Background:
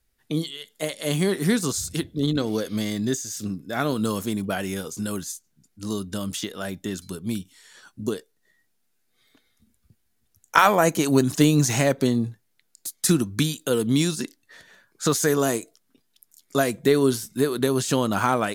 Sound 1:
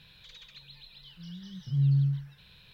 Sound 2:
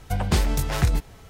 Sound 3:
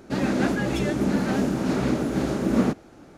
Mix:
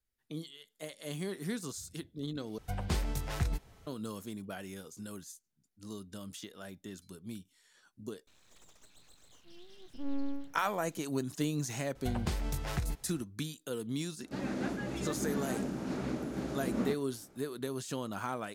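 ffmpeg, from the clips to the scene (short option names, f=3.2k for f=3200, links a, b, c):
-filter_complex "[2:a]asplit=2[a][b];[0:a]volume=-15.5dB[c];[1:a]aeval=exprs='abs(val(0))':c=same[d];[b]acompressor=threshold=-22dB:ratio=6:attack=80:release=87:knee=1:detection=rms[e];[c]asplit=2[f][g];[f]atrim=end=2.584[h];[a]atrim=end=1.29,asetpts=PTS-STARTPTS,volume=-11.5dB[i];[g]atrim=start=3.866[j];[d]atrim=end=2.73,asetpts=PTS-STARTPTS,volume=-7dB,afade=t=in:d=0.004:c=hsin,afade=t=out:st=2.726:d=0.004:c=hsin,adelay=8270[k];[e]atrim=end=1.29,asetpts=PTS-STARTPTS,volume=-11dB,afade=t=in:d=0.004:c=hsin,afade=t=out:st=1.286:d=0.004:c=hsin,adelay=11950[l];[3:a]atrim=end=3.17,asetpts=PTS-STARTPTS,volume=-12.5dB,afade=t=in:d=0.004:c=hsin,afade=t=out:st=3.166:d=0.004:c=hsin,adelay=14210[m];[h][i]acrossfade=d=0.004:c1=hsin:c2=hsin[n];[n][j]acrossfade=d=0.004:c1=hsin:c2=hsin[o];[o][k][l][m]amix=inputs=4:normalize=0"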